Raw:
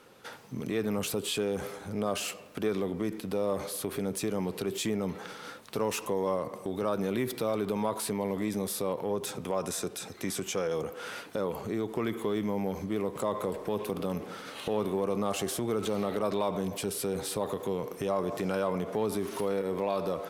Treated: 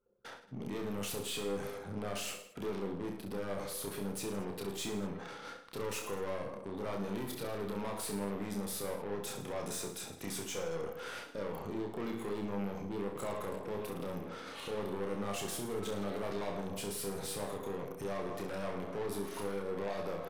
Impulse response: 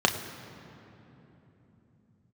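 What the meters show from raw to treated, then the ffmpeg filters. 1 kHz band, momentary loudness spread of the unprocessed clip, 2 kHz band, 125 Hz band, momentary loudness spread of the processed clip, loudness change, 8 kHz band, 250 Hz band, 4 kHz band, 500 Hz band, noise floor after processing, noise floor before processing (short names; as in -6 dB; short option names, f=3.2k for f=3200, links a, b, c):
-7.0 dB, 6 LU, -4.5 dB, -6.0 dB, 4 LU, -7.0 dB, -5.0 dB, -7.0 dB, -5.0 dB, -7.5 dB, -49 dBFS, -46 dBFS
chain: -filter_complex "[0:a]anlmdn=0.0398,aeval=exprs='(tanh(39.8*val(0)+0.3)-tanh(0.3))/39.8':c=same,asplit=2[a][b];[b]aecho=0:1:30|66|109.2|161|223.2:0.631|0.398|0.251|0.158|0.1[c];[a][c]amix=inputs=2:normalize=0,volume=-4dB"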